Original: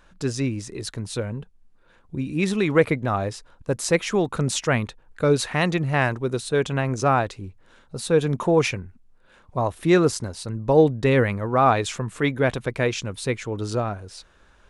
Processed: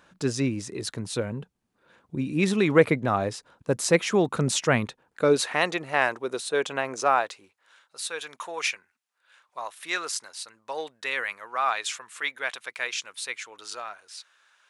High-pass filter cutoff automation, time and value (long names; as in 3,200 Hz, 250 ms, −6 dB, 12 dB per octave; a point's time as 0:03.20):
0:04.84 130 Hz
0:05.70 460 Hz
0:06.87 460 Hz
0:07.97 1,400 Hz